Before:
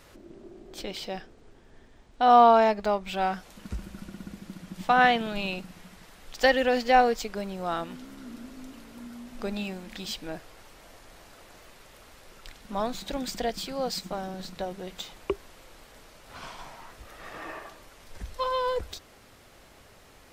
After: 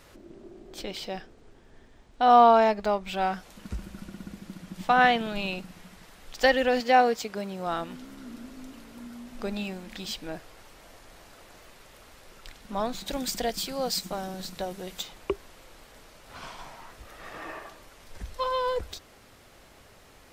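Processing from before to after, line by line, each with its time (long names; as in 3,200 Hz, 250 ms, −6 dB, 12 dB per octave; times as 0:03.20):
0:06.80–0:07.67: high-pass filter 94 Hz
0:13.06–0:15.03: high-shelf EQ 5,500 Hz +9 dB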